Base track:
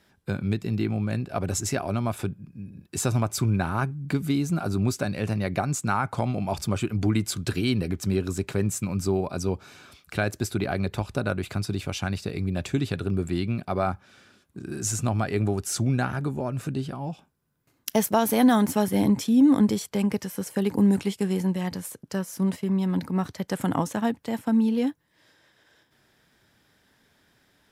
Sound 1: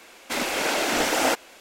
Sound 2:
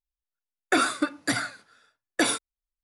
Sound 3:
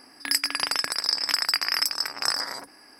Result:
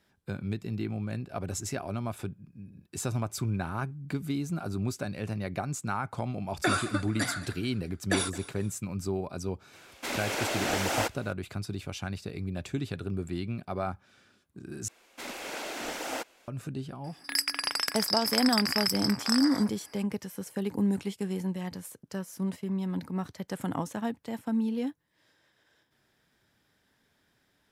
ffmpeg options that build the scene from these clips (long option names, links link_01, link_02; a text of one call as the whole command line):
ffmpeg -i bed.wav -i cue0.wav -i cue1.wav -i cue2.wav -filter_complex "[1:a]asplit=2[link_01][link_02];[0:a]volume=-7dB[link_03];[2:a]aecho=1:1:217|434|651:0.141|0.0523|0.0193[link_04];[link_03]asplit=2[link_05][link_06];[link_05]atrim=end=14.884[link_07];[link_02]atrim=end=1.6,asetpts=PTS-STARTPTS,volume=-13dB[link_08];[link_06]atrim=start=16.476[link_09];[link_04]atrim=end=2.83,asetpts=PTS-STARTPTS,volume=-5dB,afade=type=in:duration=0.004:curve=hsin,afade=type=out:start_time=2.826:duration=0.004:curve=hsin,adelay=5920[link_10];[link_01]atrim=end=1.6,asetpts=PTS-STARTPTS,volume=-7dB,afade=type=in:duration=0.004:curve=hsin,afade=type=out:start_time=1.596:duration=0.004:curve=hsin,adelay=9730[link_11];[3:a]atrim=end=2.99,asetpts=PTS-STARTPTS,volume=-4.5dB,afade=type=in:duration=0.004:curve=hsin,afade=type=out:start_time=2.986:duration=0.004:curve=hsin,adelay=17040[link_12];[link_07][link_08]acrossfade=duration=0.004:curve1=hsin:curve2=hsin[link_13];[link_13][link_09]acrossfade=duration=0.004:curve1=hsin:curve2=hsin[link_14];[link_14][link_10][link_11][link_12]amix=inputs=4:normalize=0" out.wav